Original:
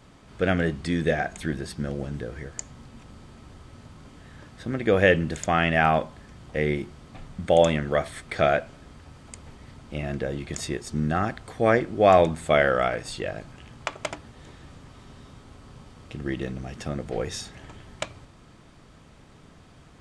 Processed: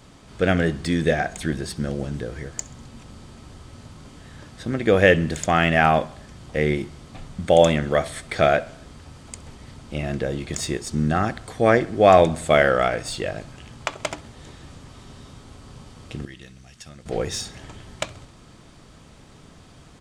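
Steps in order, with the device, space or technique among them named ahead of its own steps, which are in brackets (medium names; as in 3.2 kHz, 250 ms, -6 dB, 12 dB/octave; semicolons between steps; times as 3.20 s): 16.25–17.06 s: amplifier tone stack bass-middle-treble 5-5-5; exciter from parts (in parallel at -4 dB: high-pass 2.8 kHz 12 dB/octave + saturation -36 dBFS, distortion -5 dB); on the sum: feedback delay 66 ms, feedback 58%, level -23 dB; trim +3.5 dB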